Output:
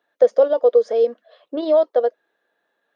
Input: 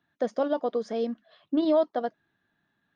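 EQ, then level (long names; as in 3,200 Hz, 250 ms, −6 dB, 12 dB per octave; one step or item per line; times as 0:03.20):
dynamic equaliser 760 Hz, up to −4 dB, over −34 dBFS, Q 1.4
high-pass with resonance 500 Hz, resonance Q 5.8
+2.5 dB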